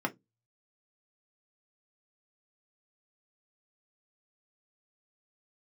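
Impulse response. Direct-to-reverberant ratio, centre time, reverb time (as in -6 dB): 1.5 dB, 5 ms, 0.15 s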